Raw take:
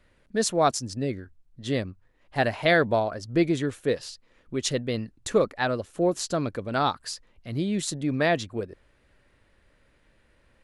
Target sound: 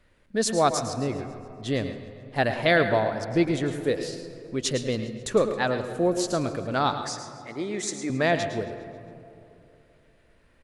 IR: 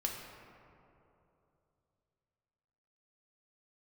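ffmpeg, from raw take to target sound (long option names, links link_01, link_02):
-filter_complex "[0:a]asettb=1/sr,asplit=3[link_01][link_02][link_03];[link_01]atrim=end=6.934[link_04];[link_02]atrim=start=6.93:end=8.1,asetpts=PTS-STARTPTS,afade=type=in:duration=0.004:curve=qsin,afade=type=out:start_time=1.166:duration=0.004:curve=qsin,highpass=340,equalizer=frequency=400:width_type=q:width=4:gain=5,equalizer=frequency=2000:width_type=q:width=4:gain=9,equalizer=frequency=2900:width_type=q:width=4:gain=-8,equalizer=frequency=4200:width_type=q:width=4:gain=-5,equalizer=frequency=6100:width_type=q:width=4:gain=5,lowpass=frequency=9100:width=0.5412,lowpass=frequency=9100:width=1.3066[link_05];[link_03]atrim=start=8.096[link_06];[link_04][link_05]acrossfade=duration=0.004:curve1=hsin:curve2=qsin[link_07];[link_07][link_06]acrossfade=duration=0.004:curve1=qsin:curve2=hsin,aecho=1:1:136|272|408|544|680:0.112|0.0651|0.0377|0.0219|0.0127,asplit=2[link_08][link_09];[1:a]atrim=start_sample=2205,adelay=108[link_10];[link_09][link_10]afir=irnorm=-1:irlink=0,volume=-10.5dB[link_11];[link_08][link_11]amix=inputs=2:normalize=0"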